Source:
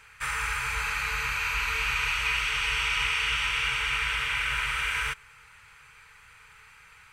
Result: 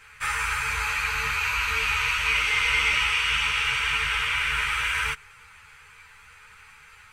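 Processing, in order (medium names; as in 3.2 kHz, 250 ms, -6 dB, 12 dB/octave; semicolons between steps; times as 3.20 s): 2.29–2.98 s: small resonant body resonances 300/510/2100 Hz, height 10 dB -> 12 dB; three-phase chorus; trim +6 dB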